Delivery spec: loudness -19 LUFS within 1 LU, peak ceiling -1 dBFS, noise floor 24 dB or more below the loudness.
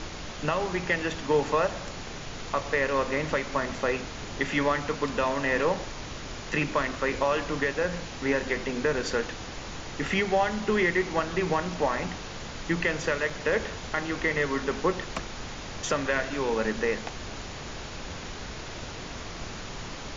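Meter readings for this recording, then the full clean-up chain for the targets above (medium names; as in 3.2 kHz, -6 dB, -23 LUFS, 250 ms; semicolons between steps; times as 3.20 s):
dropouts 1; longest dropout 3.6 ms; noise floor -39 dBFS; noise floor target -53 dBFS; loudness -29.0 LUFS; peak level -13.5 dBFS; loudness target -19.0 LUFS
-> interpolate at 13.30 s, 3.6 ms; noise print and reduce 14 dB; trim +10 dB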